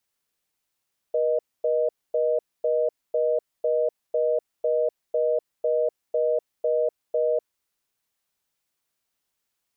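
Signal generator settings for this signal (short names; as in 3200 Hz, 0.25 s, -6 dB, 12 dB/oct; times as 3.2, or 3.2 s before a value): call progress tone reorder tone, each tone -22.5 dBFS 6.27 s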